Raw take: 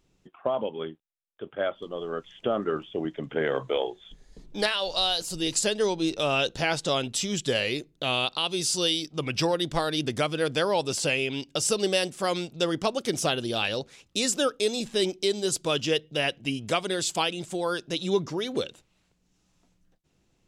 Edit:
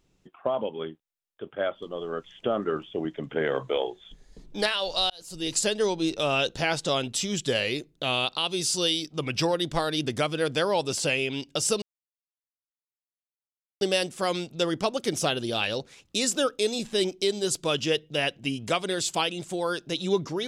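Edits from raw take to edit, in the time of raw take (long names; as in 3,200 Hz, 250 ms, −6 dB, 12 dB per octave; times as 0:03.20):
0:05.10–0:05.57: fade in
0:11.82: splice in silence 1.99 s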